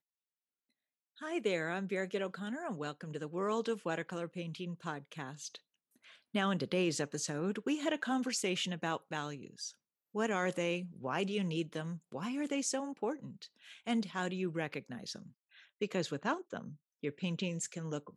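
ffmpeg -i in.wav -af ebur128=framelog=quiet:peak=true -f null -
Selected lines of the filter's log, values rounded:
Integrated loudness:
  I:         -37.3 LUFS
  Threshold: -47.7 LUFS
Loudness range:
  LRA:         4.4 LU
  Threshold: -57.7 LUFS
  LRA low:   -39.8 LUFS
  LRA high:  -35.5 LUFS
True peak:
  Peak:      -18.4 dBFS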